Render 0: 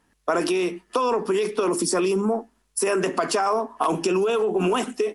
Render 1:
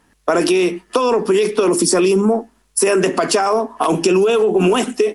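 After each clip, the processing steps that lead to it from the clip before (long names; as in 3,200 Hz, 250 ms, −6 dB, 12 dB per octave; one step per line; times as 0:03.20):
dynamic equaliser 1,100 Hz, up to −5 dB, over −34 dBFS, Q 1.2
level +8.5 dB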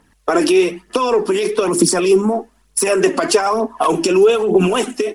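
phase shifter 1.1 Hz, delay 3.7 ms, feedback 49%
level −1 dB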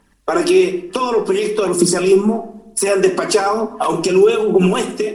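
rectangular room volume 1,900 cubic metres, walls furnished, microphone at 1.2 metres
level −2 dB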